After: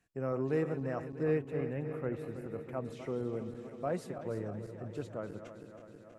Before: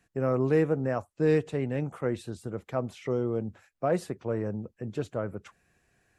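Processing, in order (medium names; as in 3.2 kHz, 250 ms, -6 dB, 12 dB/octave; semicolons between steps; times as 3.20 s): backward echo that repeats 161 ms, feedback 83%, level -11 dB; 1.23–2.85 s: high-order bell 5.5 kHz -11 dB; trim -8 dB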